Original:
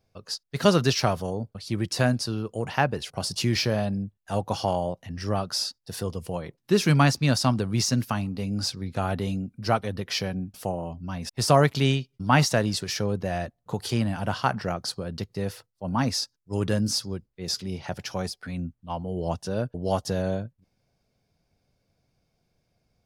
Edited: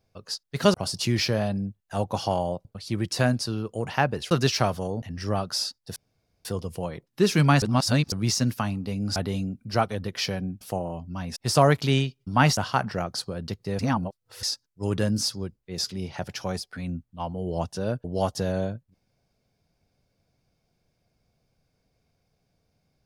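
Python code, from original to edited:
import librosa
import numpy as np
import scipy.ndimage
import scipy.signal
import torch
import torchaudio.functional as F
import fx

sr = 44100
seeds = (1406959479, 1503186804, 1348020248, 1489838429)

y = fx.edit(x, sr, fx.swap(start_s=0.74, length_s=0.71, other_s=3.11, other_length_s=1.91),
    fx.insert_room_tone(at_s=5.96, length_s=0.49),
    fx.reverse_span(start_s=7.13, length_s=0.5),
    fx.cut(start_s=8.67, length_s=0.42),
    fx.cut(start_s=12.5, length_s=1.77),
    fx.reverse_span(start_s=15.49, length_s=0.64), tone=tone)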